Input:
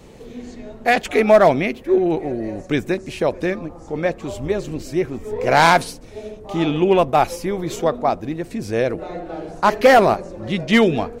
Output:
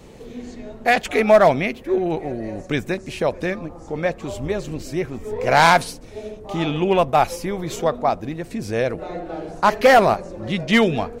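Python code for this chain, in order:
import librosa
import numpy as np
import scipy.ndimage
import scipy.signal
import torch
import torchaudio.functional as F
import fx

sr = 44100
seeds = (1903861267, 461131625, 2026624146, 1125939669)

y = fx.dynamic_eq(x, sr, hz=330.0, q=1.6, threshold_db=-29.0, ratio=4.0, max_db=-5)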